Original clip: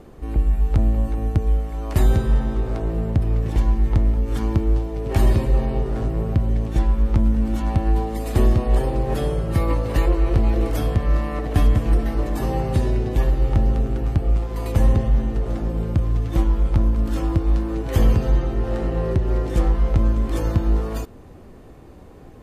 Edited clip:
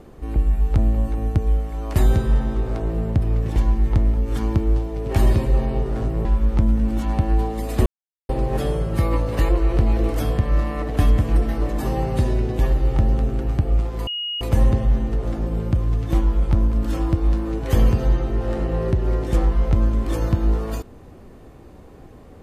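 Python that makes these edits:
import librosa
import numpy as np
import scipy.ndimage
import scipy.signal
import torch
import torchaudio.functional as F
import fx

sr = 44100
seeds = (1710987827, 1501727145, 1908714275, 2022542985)

y = fx.edit(x, sr, fx.cut(start_s=6.25, length_s=0.57),
    fx.silence(start_s=8.43, length_s=0.43),
    fx.insert_tone(at_s=14.64, length_s=0.34, hz=2880.0, db=-24.0), tone=tone)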